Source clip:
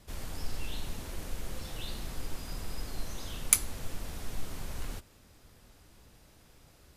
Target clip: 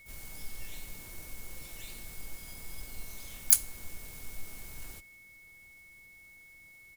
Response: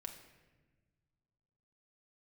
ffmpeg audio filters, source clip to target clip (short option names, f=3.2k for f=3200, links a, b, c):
-filter_complex "[0:a]asplit=3[a][b][c];[b]asetrate=29433,aresample=44100,atempo=1.49831,volume=-3dB[d];[c]asetrate=88200,aresample=44100,atempo=0.5,volume=-7dB[e];[a][d][e]amix=inputs=3:normalize=0,aeval=exprs='val(0)+0.00708*sin(2*PI*2200*n/s)':c=same,aemphasis=mode=production:type=50fm,volume=-11.5dB"